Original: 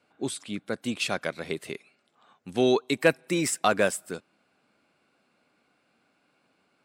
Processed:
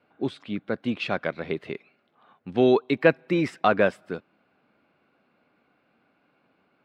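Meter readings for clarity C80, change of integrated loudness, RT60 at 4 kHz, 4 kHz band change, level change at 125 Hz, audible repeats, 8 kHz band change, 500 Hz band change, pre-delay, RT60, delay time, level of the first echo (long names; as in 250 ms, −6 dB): no reverb audible, +2.5 dB, no reverb audible, −4.0 dB, +4.0 dB, no echo audible, below −20 dB, +3.0 dB, no reverb audible, no reverb audible, no echo audible, no echo audible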